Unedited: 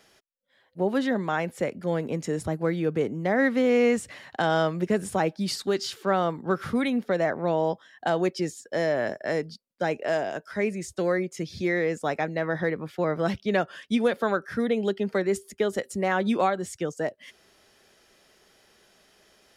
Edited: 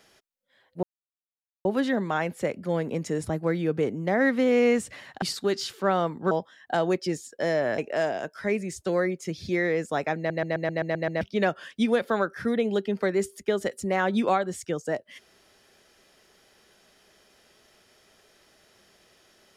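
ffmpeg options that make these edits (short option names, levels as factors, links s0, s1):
-filter_complex "[0:a]asplit=13[s0][s1][s2][s3][s4][s5][s6][s7][s8][s9][s10][s11][s12];[s0]atrim=end=0.83,asetpts=PTS-STARTPTS,afade=t=out:st=0.826:d=0.004:c=hsin,apad=pad_dur=0.82[s13];[s1]atrim=start=0.83:end=4.402,asetpts=PTS-STARTPTS,afade=t=in:d=0.004:c=hsin[s14];[s2]atrim=start=5.448:end=6.542[s15];[s3]atrim=start=7.638:end=9.112[s16];[s4]atrim=start=9.898:end=12.422[s17];[s5]atrim=start=12.288:end=12.422[s18];[s6]atrim=start=12.288:end=12.422[s19];[s7]atrim=start=12.288:end=12.422[s20];[s8]atrim=start=12.288:end=12.422[s21];[s9]atrim=start=12.288:end=12.422[s22];[s10]atrim=start=12.288:end=12.422[s23];[s11]atrim=start=12.288:end=12.422[s24];[s12]atrim=start=13.328[s25];[s13][s14]concat=n=2:v=0:a=1[s26];[s26][s15]acrossfade=d=0.004:c1=hsin:c2=hsin[s27];[s27][s16]acrossfade=d=0.004:c1=hsin:c2=hsin[s28];[s28][s17]acrossfade=d=0.004:c1=hsin:c2=hsin[s29];[s29][s18]acrossfade=d=0.004:c1=hsin:c2=hsin[s30];[s30][s19]acrossfade=d=0.004:c1=hsin:c2=hsin[s31];[s31][s20]acrossfade=d=0.004:c1=hsin:c2=hsin[s32];[s32][s21]acrossfade=d=0.004:c1=hsin:c2=hsin[s33];[s33][s22]acrossfade=d=0.004:c1=hsin:c2=hsin[s34];[s34][s23]acrossfade=d=0.004:c1=hsin:c2=hsin[s35];[s35][s24]acrossfade=d=0.004:c1=hsin:c2=hsin[s36];[s36][s25]acrossfade=d=0.004:c1=hsin:c2=hsin"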